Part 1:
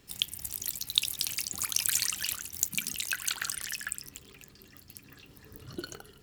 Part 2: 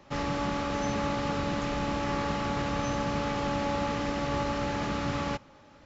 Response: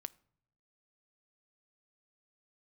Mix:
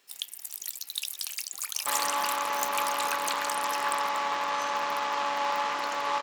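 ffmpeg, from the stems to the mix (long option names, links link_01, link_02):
-filter_complex "[0:a]volume=18dB,asoftclip=hard,volume=-18dB,volume=-1.5dB[link_01];[1:a]equalizer=frequency=1000:width=3.6:gain=12.5,aeval=exprs='0.2*(cos(1*acos(clip(val(0)/0.2,-1,1)))-cos(1*PI/2))+0.0224*(cos(8*acos(clip(val(0)/0.2,-1,1)))-cos(8*PI/2))':channel_layout=same,adelay=1750,volume=0dB[link_02];[link_01][link_02]amix=inputs=2:normalize=0,highpass=670"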